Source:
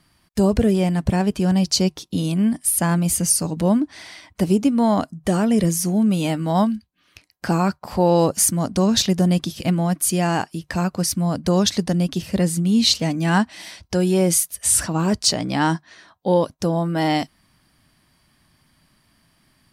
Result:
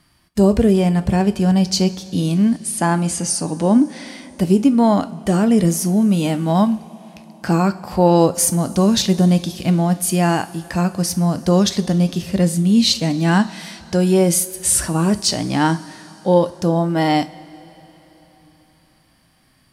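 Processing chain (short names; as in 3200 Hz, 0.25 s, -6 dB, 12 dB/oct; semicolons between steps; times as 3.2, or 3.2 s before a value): 2.59–4.07 speaker cabinet 110–9000 Hz, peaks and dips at 180 Hz -4 dB, 260 Hz +4 dB, 420 Hz +3 dB, 820 Hz +5 dB; two-slope reverb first 0.29 s, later 4.1 s, from -18 dB, DRR 12 dB; harmonic-percussive split harmonic +5 dB; gain -1 dB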